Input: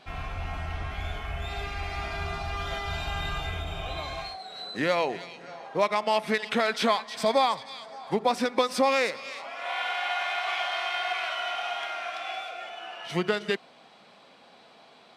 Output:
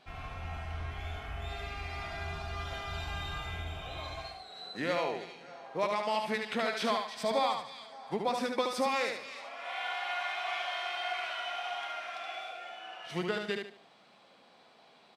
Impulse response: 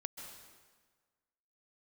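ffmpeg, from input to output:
-af "aecho=1:1:73|146|219|292:0.596|0.185|0.0572|0.0177,volume=-7.5dB"

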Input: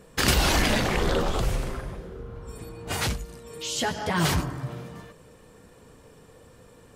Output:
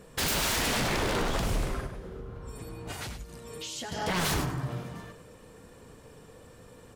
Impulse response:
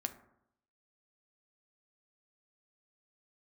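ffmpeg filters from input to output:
-filter_complex "[0:a]asettb=1/sr,asplit=3[link_01][link_02][link_03];[link_01]atrim=end=1.864[link_04];[link_02]atrim=start=1.86:end=3.92,asetpts=PTS-STARTPTS,afade=type=in:duration=0.004:curve=qsin,afade=type=out:start_time=2.056:duration=0.004:curve=qsin,acompressor=threshold=-36dB:ratio=10[link_05];[link_03]atrim=start=3.916[link_06];[link_04][link_05]acrossfade=duration=0.004:curve1=hsin:curve2=qsin[link_07];[link_07][link_06]acrossfade=duration=0.004:curve1=qsin:curve2=hsin,aeval=exprs='0.0668*(abs(mod(val(0)/0.0668+3,4)-2)-1)':channel_layout=same,aecho=1:1:102:0.316"

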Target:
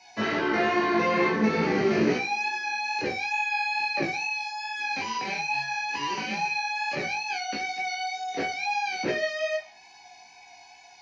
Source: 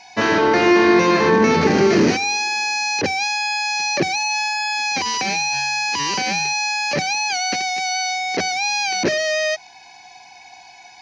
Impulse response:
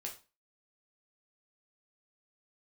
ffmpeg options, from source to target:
-filter_complex "[1:a]atrim=start_sample=2205[link_01];[0:a][link_01]afir=irnorm=-1:irlink=0,acrossover=split=190|3800[link_02][link_03][link_04];[link_04]acompressor=threshold=-46dB:ratio=5[link_05];[link_02][link_03][link_05]amix=inputs=3:normalize=0,flanger=delay=16:depth=2.8:speed=2.3,volume=-2dB"

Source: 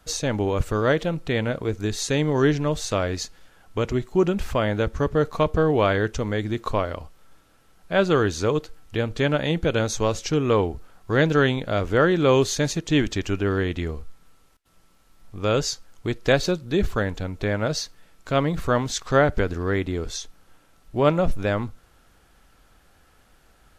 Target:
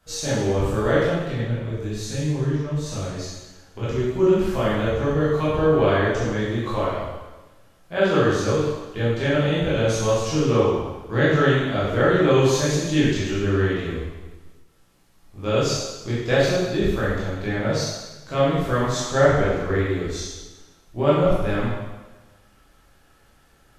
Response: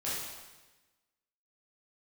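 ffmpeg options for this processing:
-filter_complex "[0:a]asettb=1/sr,asplit=3[link_01][link_02][link_03];[link_01]atrim=end=1.244[link_04];[link_02]atrim=start=1.24:end=3.83,asetpts=PTS-STARTPTS,afade=type=in:duration=0.004:curve=qsin,afade=type=out:start_time=2.586:duration=0.004:curve=qsin,acrossover=split=210[link_05][link_06];[link_06]acompressor=threshold=-31dB:ratio=6[link_07];[link_05][link_07]amix=inputs=2:normalize=0[link_08];[link_03]atrim=start=3.826[link_09];[link_04][link_08]acrossfade=duration=0.004:curve1=hsin:curve2=qsin[link_10];[link_10][link_09]acrossfade=duration=0.004:curve1=qsin:curve2=hsin[link_11];[1:a]atrim=start_sample=2205[link_12];[link_11][link_12]afir=irnorm=-1:irlink=0,volume=-4dB"

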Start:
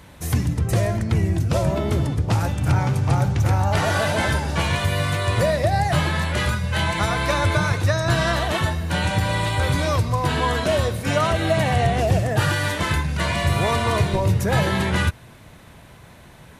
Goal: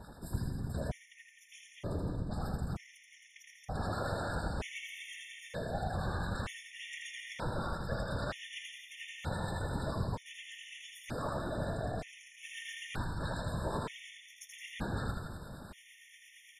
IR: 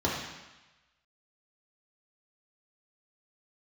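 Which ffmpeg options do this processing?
-filter_complex "[0:a]areverse,acompressor=threshold=-32dB:ratio=12,areverse,asetrate=40440,aresample=44100,atempo=1.09051,acrossover=split=1100[link_01][link_02];[link_01]aeval=exprs='val(0)*(1-0.7/2+0.7/2*cos(2*PI*8.7*n/s))':channel_layout=same[link_03];[link_02]aeval=exprs='val(0)*(1-0.7/2-0.7/2*cos(2*PI*8.7*n/s))':channel_layout=same[link_04];[link_03][link_04]amix=inputs=2:normalize=0,aeval=exprs='0.0596*(cos(1*acos(clip(val(0)/0.0596,-1,1)))-cos(1*PI/2))+0.00335*(cos(5*acos(clip(val(0)/0.0596,-1,1)))-cos(5*PI/2))+0.00335*(cos(7*acos(clip(val(0)/0.0596,-1,1)))-cos(7*PI/2))':channel_layout=same,afftfilt=real='hypot(re,im)*cos(2*PI*random(0))':imag='hypot(re,im)*sin(2*PI*random(1))':win_size=512:overlap=0.75,aecho=1:1:80|168|264.8|371.3|488.4:0.631|0.398|0.251|0.158|0.1,afftfilt=real='re*gt(sin(2*PI*0.54*pts/sr)*(1-2*mod(floor(b*sr/1024/1800),2)),0)':imag='im*gt(sin(2*PI*0.54*pts/sr)*(1-2*mod(floor(b*sr/1024/1800),2)),0)':win_size=1024:overlap=0.75,volume=6.5dB"

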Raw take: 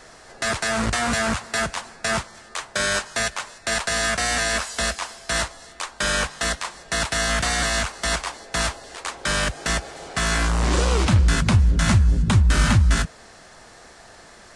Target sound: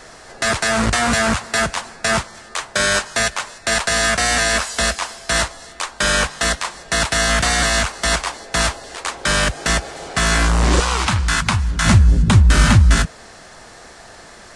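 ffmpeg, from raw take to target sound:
ffmpeg -i in.wav -filter_complex "[0:a]asettb=1/sr,asplit=3[link_01][link_02][link_03];[link_01]atrim=end=10.804[link_04];[link_02]atrim=start=10.8:end=11.85,asetpts=PTS-STARTPTS,afade=type=in:duration=0.004:curve=qsin,afade=type=out:start_time=1.046:duration=0.004:curve=qsin,lowshelf=frequency=690:width_type=q:width=1.5:gain=-8.5[link_05];[link_03]atrim=start=11.846[link_06];[link_04][link_05]acrossfade=duration=0.004:curve1=hsin:curve2=qsin[link_07];[link_07][link_06]acrossfade=duration=0.004:curve1=qsin:curve2=hsin,volume=5.5dB" out.wav

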